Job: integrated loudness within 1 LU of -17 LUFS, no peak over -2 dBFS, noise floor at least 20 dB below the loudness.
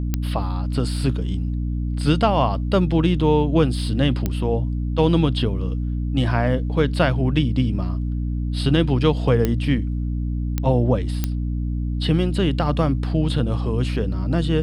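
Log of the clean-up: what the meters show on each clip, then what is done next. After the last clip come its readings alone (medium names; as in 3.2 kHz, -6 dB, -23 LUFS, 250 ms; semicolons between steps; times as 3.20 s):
clicks found 5; hum 60 Hz; highest harmonic 300 Hz; hum level -21 dBFS; loudness -21.5 LUFS; peak level -4.0 dBFS; loudness target -17.0 LUFS
-> de-click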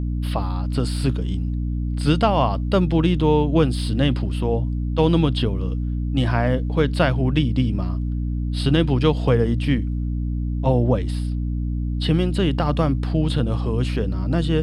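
clicks found 0; hum 60 Hz; highest harmonic 300 Hz; hum level -21 dBFS
-> hum notches 60/120/180/240/300 Hz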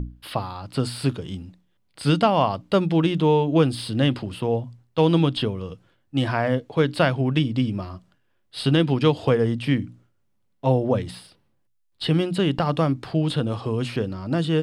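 hum not found; loudness -23.0 LUFS; peak level -5.5 dBFS; loudness target -17.0 LUFS
-> trim +6 dB; peak limiter -2 dBFS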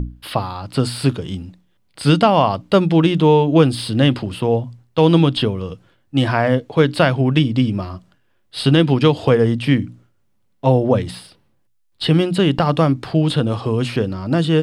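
loudness -17.0 LUFS; peak level -2.0 dBFS; noise floor -61 dBFS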